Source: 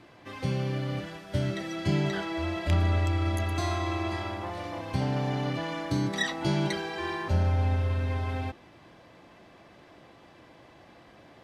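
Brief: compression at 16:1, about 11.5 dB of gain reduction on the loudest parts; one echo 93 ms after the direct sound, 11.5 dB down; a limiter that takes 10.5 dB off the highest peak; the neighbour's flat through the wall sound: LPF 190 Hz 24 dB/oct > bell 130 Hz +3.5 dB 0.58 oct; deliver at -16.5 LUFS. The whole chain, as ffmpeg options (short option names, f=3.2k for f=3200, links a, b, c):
-af "acompressor=threshold=-32dB:ratio=16,alimiter=level_in=9.5dB:limit=-24dB:level=0:latency=1,volume=-9.5dB,lowpass=f=190:w=0.5412,lowpass=f=190:w=1.3066,equalizer=f=130:t=o:w=0.58:g=3.5,aecho=1:1:93:0.266,volume=26.5dB"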